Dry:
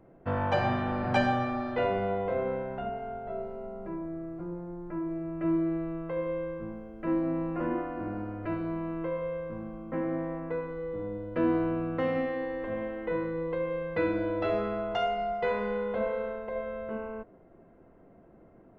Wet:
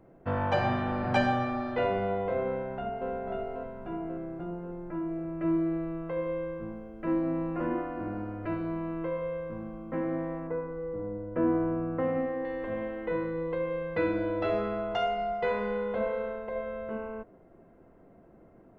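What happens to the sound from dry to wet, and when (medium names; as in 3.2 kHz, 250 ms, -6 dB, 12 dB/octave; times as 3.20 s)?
2.47–3.09 s: echo throw 540 ms, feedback 55%, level -3 dB
10.47–12.45 s: low-pass 1.5 kHz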